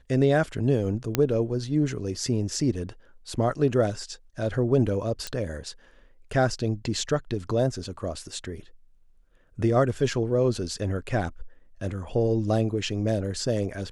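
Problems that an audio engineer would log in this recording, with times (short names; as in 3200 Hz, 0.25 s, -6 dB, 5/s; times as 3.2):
1.15 pop -7 dBFS
5.27 pop -16 dBFS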